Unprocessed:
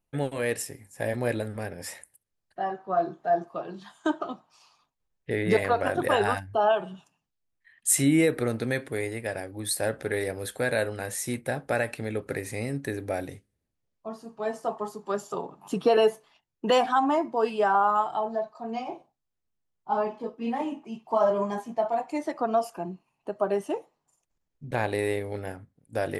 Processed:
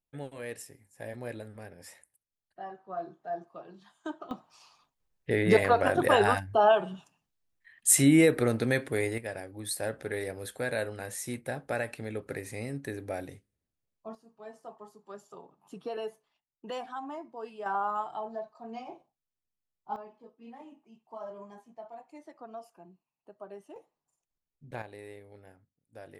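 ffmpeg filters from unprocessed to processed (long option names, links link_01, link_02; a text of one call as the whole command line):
ffmpeg -i in.wav -af "asetnsamples=nb_out_samples=441:pad=0,asendcmd='4.31 volume volume 1dB;9.18 volume volume -5.5dB;14.15 volume volume -16dB;17.66 volume volume -8.5dB;19.96 volume volume -19dB;23.76 volume volume -11dB;24.82 volume volume -19dB',volume=-11.5dB" out.wav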